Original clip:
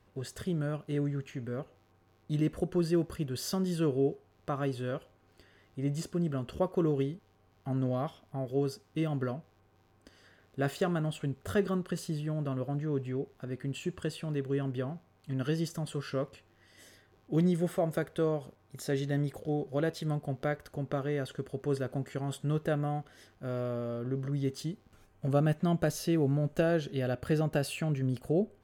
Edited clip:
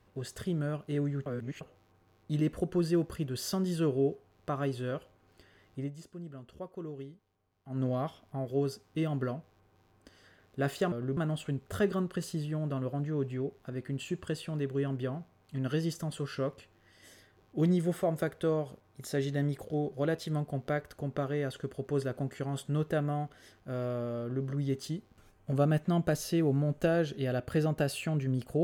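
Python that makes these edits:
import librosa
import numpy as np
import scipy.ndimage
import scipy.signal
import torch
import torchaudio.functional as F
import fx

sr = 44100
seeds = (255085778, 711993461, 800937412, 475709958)

y = fx.edit(x, sr, fx.reverse_span(start_s=1.26, length_s=0.35),
    fx.fade_down_up(start_s=5.79, length_s=2.02, db=-12.5, fade_s=0.12),
    fx.duplicate(start_s=23.95, length_s=0.25, to_s=10.92), tone=tone)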